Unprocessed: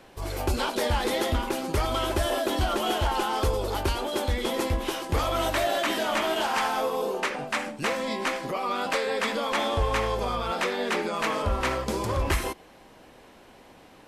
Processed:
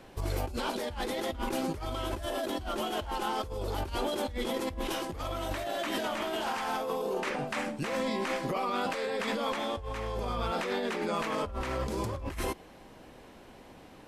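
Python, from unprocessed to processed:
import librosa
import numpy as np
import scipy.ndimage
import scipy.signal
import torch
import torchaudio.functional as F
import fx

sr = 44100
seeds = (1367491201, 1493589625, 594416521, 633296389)

y = fx.low_shelf(x, sr, hz=360.0, db=5.5)
y = fx.over_compress(y, sr, threshold_db=-28.0, ratio=-1.0)
y = y * librosa.db_to_amplitude(-5.5)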